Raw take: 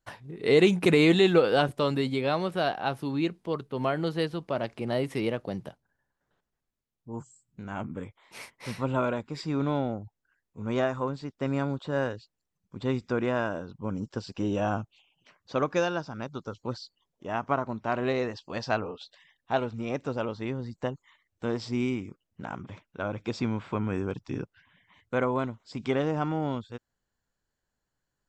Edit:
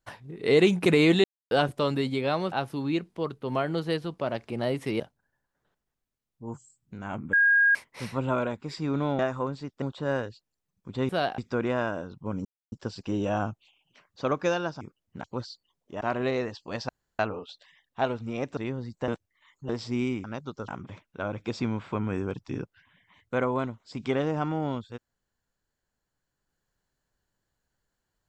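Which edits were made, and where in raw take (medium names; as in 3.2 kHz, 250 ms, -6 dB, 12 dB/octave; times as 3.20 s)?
1.24–1.51 s: mute
2.52–2.81 s: move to 12.96 s
5.29–5.66 s: delete
7.99–8.41 s: bleep 1.63 kHz -17 dBFS
9.85–10.80 s: delete
11.43–11.69 s: delete
14.03 s: insert silence 0.27 s
16.12–16.56 s: swap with 22.05–22.48 s
17.33–17.83 s: delete
18.71 s: insert room tone 0.30 s
20.09–20.38 s: delete
20.89–21.50 s: reverse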